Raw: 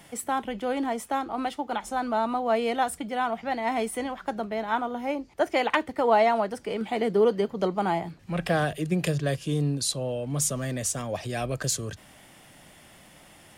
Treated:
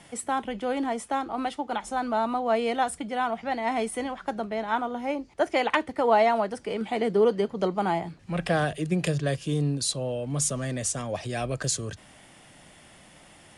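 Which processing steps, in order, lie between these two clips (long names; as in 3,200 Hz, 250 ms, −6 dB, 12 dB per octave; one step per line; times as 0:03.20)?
Butterworth low-pass 11,000 Hz 72 dB per octave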